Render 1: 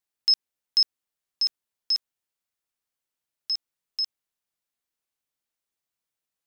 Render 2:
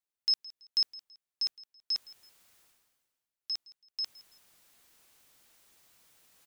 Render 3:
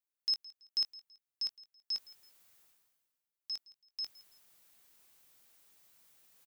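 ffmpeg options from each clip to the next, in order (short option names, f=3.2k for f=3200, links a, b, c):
-af "areverse,acompressor=mode=upward:threshold=-33dB:ratio=2.5,areverse,aecho=1:1:165|330:0.0944|0.0302,volume=-7dB"
-filter_complex "[0:a]highshelf=f=12k:g=7.5,asplit=2[a][b];[b]adelay=21,volume=-12.5dB[c];[a][c]amix=inputs=2:normalize=0,volume=-5.5dB"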